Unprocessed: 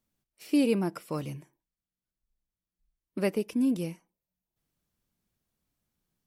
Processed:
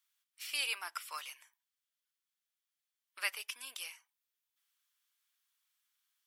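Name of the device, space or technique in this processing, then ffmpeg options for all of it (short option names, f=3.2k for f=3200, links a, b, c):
headphones lying on a table: -af "highpass=f=1.2k:w=0.5412,highpass=f=1.2k:w=1.3066,equalizer=f=3.3k:t=o:w=0.32:g=5,volume=3.5dB"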